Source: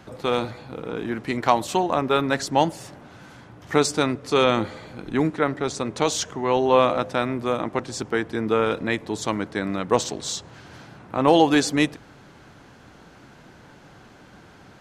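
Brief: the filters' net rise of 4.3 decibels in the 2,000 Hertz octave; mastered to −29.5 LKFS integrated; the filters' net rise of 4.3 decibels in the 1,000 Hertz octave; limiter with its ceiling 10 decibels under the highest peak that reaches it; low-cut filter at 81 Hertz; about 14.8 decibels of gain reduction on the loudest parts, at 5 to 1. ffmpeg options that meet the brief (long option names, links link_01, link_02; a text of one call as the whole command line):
ffmpeg -i in.wav -af "highpass=81,equalizer=frequency=1000:width_type=o:gain=4.5,equalizer=frequency=2000:width_type=o:gain=4,acompressor=threshold=-26dB:ratio=5,volume=4.5dB,alimiter=limit=-15.5dB:level=0:latency=1" out.wav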